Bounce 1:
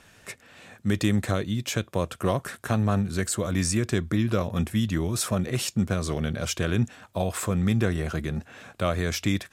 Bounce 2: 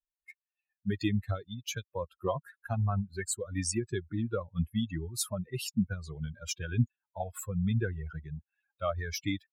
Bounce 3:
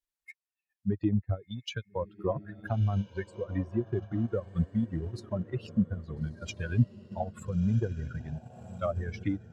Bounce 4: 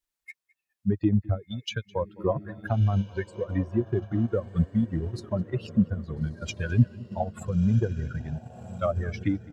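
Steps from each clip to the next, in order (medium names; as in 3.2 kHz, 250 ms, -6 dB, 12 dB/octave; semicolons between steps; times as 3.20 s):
expander on every frequency bin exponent 3
low-pass that closes with the level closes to 760 Hz, closed at -29 dBFS; echo that smears into a reverb 1350 ms, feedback 41%, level -13 dB; transient shaper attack 0 dB, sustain -6 dB; trim +2.5 dB
echo from a far wall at 36 m, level -22 dB; trim +4.5 dB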